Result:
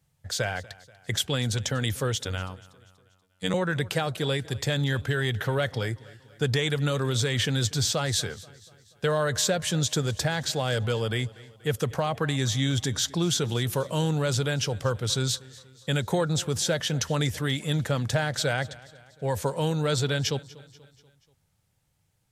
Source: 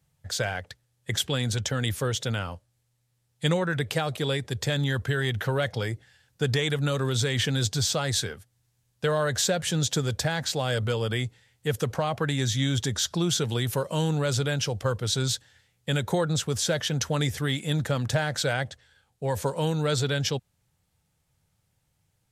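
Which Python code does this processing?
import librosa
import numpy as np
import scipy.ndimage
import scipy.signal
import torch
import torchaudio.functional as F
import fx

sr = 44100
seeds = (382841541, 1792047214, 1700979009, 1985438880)

y = fx.robotise(x, sr, hz=93.0, at=(2.25, 3.54))
y = fx.echo_feedback(y, sr, ms=241, feedback_pct=52, wet_db=-21.0)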